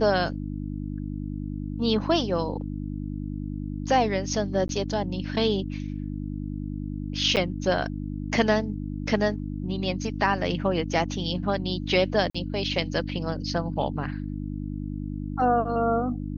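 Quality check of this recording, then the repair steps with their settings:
hum 50 Hz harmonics 6 -32 dBFS
4.68–4.69 gap 12 ms
7.36–7.37 gap 8.9 ms
12.3–12.35 gap 45 ms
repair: de-hum 50 Hz, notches 6; interpolate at 4.68, 12 ms; interpolate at 7.36, 8.9 ms; interpolate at 12.3, 45 ms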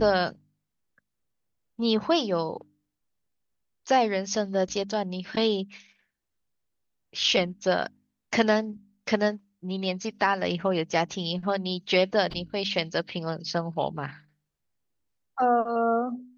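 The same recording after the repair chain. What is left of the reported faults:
none

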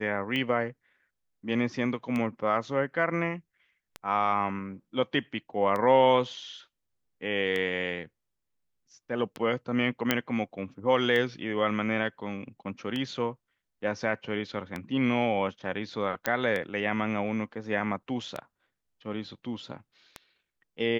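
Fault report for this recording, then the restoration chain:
tick 33 1/3 rpm -19 dBFS
10.11 pop -8 dBFS
16.26 pop -10 dBFS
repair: de-click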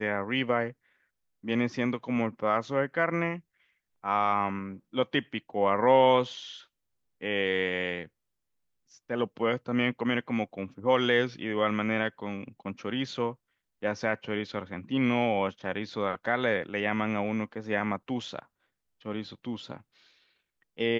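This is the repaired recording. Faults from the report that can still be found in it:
none

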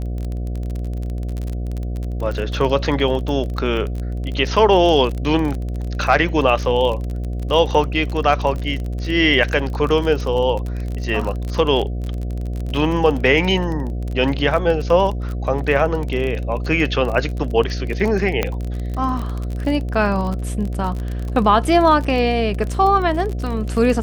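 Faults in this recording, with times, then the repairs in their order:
buzz 60 Hz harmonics 12 -24 dBFS
crackle 30/s -24 dBFS
18.43 pop -5 dBFS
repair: de-click; de-hum 60 Hz, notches 12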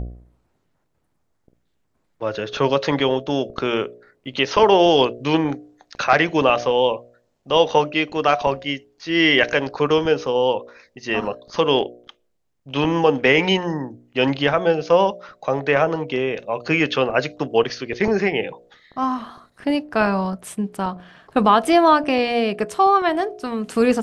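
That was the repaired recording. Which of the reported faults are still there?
none

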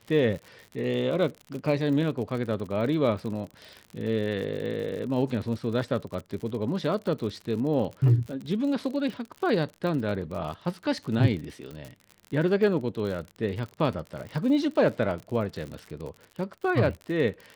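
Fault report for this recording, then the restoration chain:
crackle 57/s -34 dBFS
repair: de-click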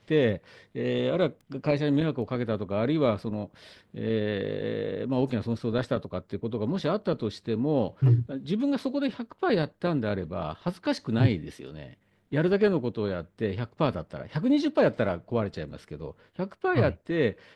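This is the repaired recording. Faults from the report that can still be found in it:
none

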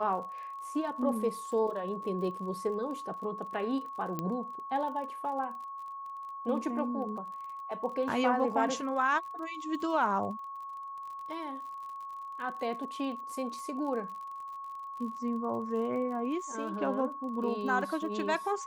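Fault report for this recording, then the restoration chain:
crackle 43/s -42 dBFS
tone 1100 Hz -39 dBFS
4.19 pop -20 dBFS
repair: de-click; notch 1100 Hz, Q 30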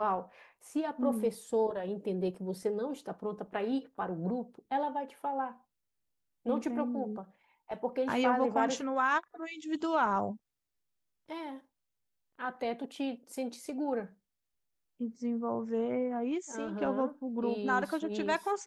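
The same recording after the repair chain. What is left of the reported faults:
none

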